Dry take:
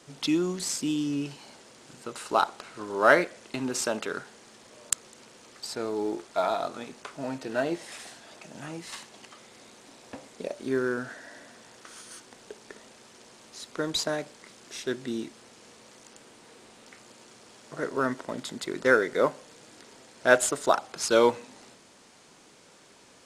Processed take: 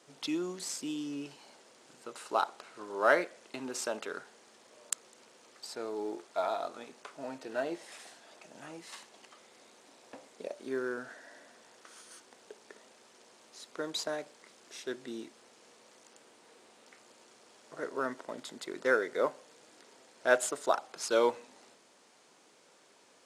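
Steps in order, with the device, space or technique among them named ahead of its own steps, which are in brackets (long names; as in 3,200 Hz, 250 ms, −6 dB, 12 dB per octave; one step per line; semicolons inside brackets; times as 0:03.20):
filter by subtraction (in parallel: low-pass filter 510 Hz 12 dB per octave + polarity inversion)
on the sum: level −7.5 dB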